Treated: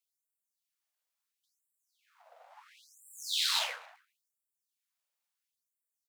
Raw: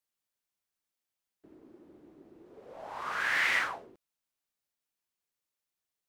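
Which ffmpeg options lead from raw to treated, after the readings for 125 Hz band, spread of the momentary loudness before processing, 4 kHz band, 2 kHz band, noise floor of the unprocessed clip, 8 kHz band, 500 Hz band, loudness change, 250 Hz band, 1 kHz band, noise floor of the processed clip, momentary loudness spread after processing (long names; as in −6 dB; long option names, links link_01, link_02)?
can't be measured, 19 LU, +8.5 dB, −13.0 dB, below −85 dBFS, +9.0 dB, −7.5 dB, −1.5 dB, below −40 dB, −8.0 dB, below −85 dBFS, 17 LU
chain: -filter_complex "[0:a]asplit=2[link_01][link_02];[link_02]adelay=266,lowpass=frequency=820:poles=1,volume=-23dB,asplit=2[link_03][link_04];[link_04]adelay=266,lowpass=frequency=820:poles=1,volume=0.16[link_05];[link_01][link_03][link_05]amix=inputs=3:normalize=0,aeval=exprs='abs(val(0))':channel_layout=same,afftfilt=real='re*gte(b*sr/1024,440*pow(7400/440,0.5+0.5*sin(2*PI*0.73*pts/sr)))':imag='im*gte(b*sr/1024,440*pow(7400/440,0.5+0.5*sin(2*PI*0.73*pts/sr)))':win_size=1024:overlap=0.75,volume=4.5dB"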